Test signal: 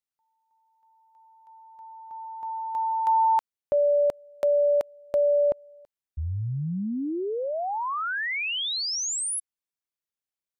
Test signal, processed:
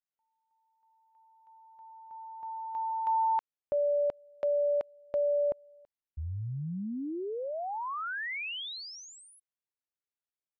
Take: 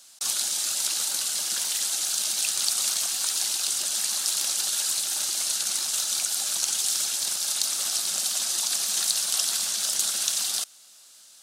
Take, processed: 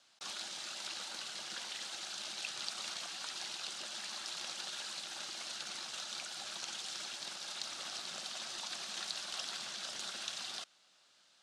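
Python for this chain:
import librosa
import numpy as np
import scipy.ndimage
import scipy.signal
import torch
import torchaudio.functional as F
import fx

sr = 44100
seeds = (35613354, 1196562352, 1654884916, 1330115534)

y = scipy.signal.sosfilt(scipy.signal.butter(2, 3200.0, 'lowpass', fs=sr, output='sos'), x)
y = y * librosa.db_to_amplitude(-6.5)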